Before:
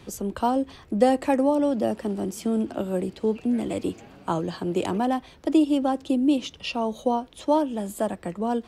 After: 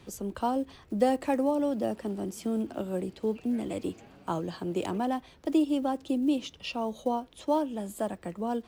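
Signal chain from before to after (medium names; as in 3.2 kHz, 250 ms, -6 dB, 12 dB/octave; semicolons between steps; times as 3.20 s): block-companded coder 7-bit; trim -5.5 dB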